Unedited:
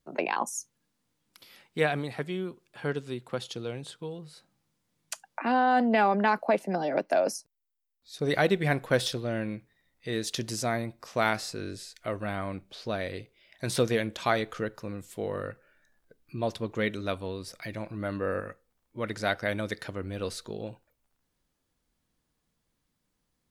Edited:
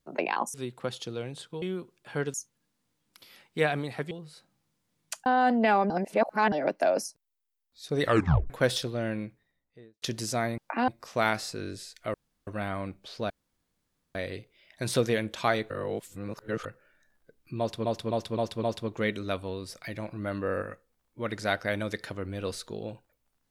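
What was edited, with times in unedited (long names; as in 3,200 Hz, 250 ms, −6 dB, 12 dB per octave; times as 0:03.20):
0:00.54–0:02.31: swap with 0:03.03–0:04.11
0:05.26–0:05.56: move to 0:10.88
0:06.20–0:06.82: reverse
0:08.32: tape stop 0.48 s
0:09.44–0:10.32: fade out and dull
0:12.14: splice in room tone 0.33 s
0:12.97: splice in room tone 0.85 s
0:14.52–0:15.47: reverse
0:16.41–0:16.67: repeat, 5 plays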